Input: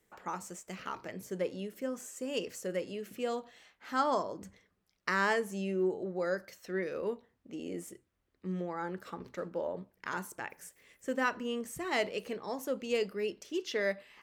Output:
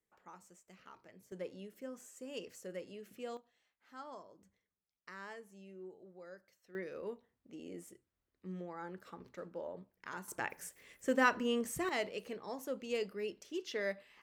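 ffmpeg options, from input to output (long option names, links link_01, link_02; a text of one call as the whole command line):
ffmpeg -i in.wav -af "asetnsamples=nb_out_samples=441:pad=0,asendcmd='1.32 volume volume -9.5dB;3.37 volume volume -19.5dB;6.75 volume volume -8dB;10.28 volume volume 2dB;11.89 volume volume -5.5dB',volume=-16.5dB" out.wav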